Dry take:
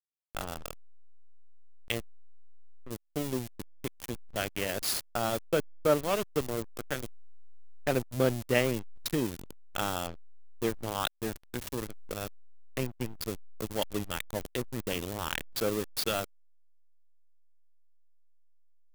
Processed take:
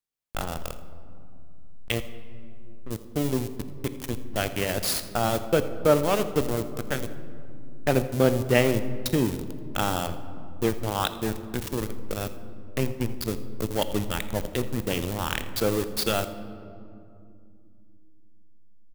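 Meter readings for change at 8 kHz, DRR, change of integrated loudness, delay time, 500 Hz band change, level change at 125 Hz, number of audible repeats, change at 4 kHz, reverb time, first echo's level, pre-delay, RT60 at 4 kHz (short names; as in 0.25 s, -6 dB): +4.0 dB, 10.5 dB, +5.5 dB, 83 ms, +6.0 dB, +8.5 dB, 1, +4.5 dB, 2.5 s, -18.5 dB, 17 ms, 1.2 s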